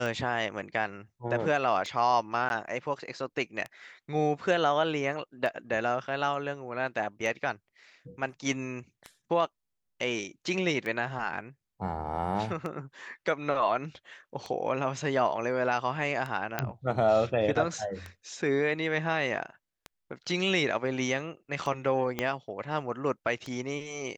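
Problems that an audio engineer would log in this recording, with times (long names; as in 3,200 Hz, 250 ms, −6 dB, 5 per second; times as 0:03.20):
scratch tick 33 1/3 rpm
0:02.49–0:02.50: drop-out 11 ms
0:16.59: click −13 dBFS
0:22.19: click −15 dBFS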